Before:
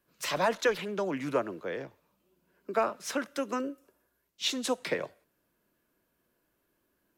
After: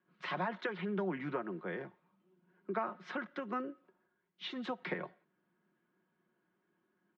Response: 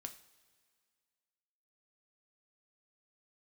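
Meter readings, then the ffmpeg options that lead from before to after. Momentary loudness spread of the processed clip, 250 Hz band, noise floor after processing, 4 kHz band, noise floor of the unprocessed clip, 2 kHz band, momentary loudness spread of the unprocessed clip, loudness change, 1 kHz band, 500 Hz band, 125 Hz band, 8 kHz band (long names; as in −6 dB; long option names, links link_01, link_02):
10 LU, −4.5 dB, −81 dBFS, −12.5 dB, −77 dBFS, −6.0 dB, 11 LU, −8.0 dB, −6.5 dB, −9.5 dB, −0.5 dB, below −30 dB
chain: -af "aecho=1:1:5.5:0.49,acompressor=threshold=-28dB:ratio=6,highpass=160,equalizer=frequency=180:width_type=q:width=4:gain=6,equalizer=frequency=550:width_type=q:width=4:gain=-9,equalizer=frequency=2600:width_type=q:width=4:gain=-7,lowpass=frequency=2900:width=0.5412,lowpass=frequency=2900:width=1.3066,volume=-2dB"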